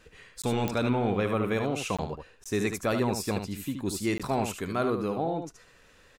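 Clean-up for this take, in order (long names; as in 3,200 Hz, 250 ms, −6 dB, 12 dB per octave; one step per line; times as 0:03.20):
click removal
repair the gap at 0:00.42/0:01.97/0:02.44/0:04.18, 16 ms
echo removal 74 ms −7 dB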